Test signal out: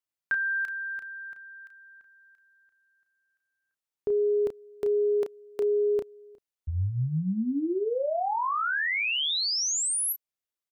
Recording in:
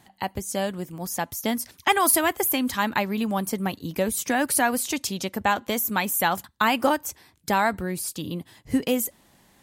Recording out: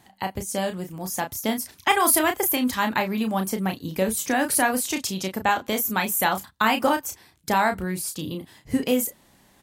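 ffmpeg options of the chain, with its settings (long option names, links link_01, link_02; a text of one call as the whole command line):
ffmpeg -i in.wav -filter_complex "[0:a]asplit=2[link_01][link_02];[link_02]adelay=32,volume=-7dB[link_03];[link_01][link_03]amix=inputs=2:normalize=0" out.wav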